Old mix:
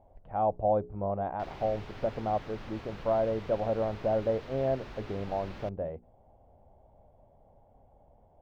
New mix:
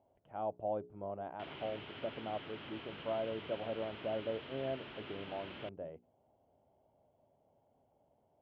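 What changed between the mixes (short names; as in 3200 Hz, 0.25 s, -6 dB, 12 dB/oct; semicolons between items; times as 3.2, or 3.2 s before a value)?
speech -6.0 dB; master: add speaker cabinet 170–3200 Hz, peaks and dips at 200 Hz -5 dB, 510 Hz -5 dB, 780 Hz -6 dB, 1100 Hz -4 dB, 1800 Hz -3 dB, 3100 Hz +10 dB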